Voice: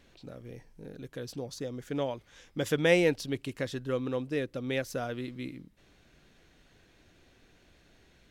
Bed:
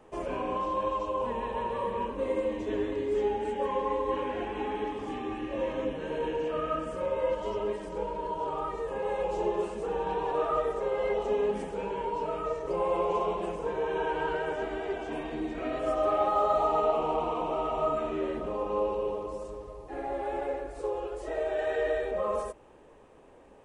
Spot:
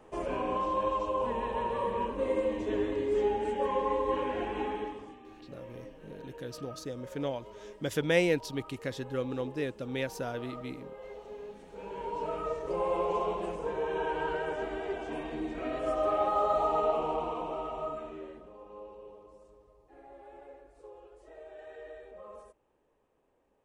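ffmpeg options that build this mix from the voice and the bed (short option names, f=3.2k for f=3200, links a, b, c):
-filter_complex "[0:a]adelay=5250,volume=-2dB[a];[1:a]volume=14.5dB,afade=t=out:st=4.6:d=0.56:silence=0.149624,afade=t=in:st=11.64:d=0.63:silence=0.188365,afade=t=out:st=16.93:d=1.57:silence=0.158489[b];[a][b]amix=inputs=2:normalize=0"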